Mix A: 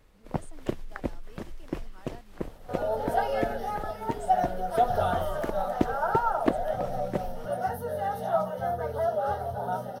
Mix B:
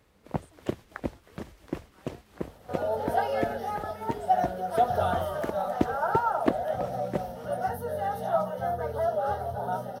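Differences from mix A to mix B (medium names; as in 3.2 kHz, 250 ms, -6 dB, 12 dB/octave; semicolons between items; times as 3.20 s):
speech -8.0 dB; master: add high-pass 55 Hz 24 dB/octave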